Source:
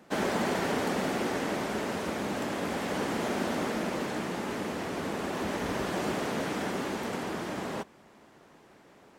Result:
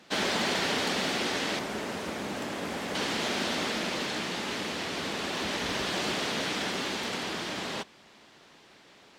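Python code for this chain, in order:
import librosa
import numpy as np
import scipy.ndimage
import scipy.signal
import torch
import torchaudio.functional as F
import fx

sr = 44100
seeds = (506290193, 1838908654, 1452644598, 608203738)

y = fx.peak_eq(x, sr, hz=3900.0, db=fx.steps((0.0, 14.5), (1.59, 5.5), (2.95, 14.5)), octaves=2.0)
y = y * 10.0 ** (-3.0 / 20.0)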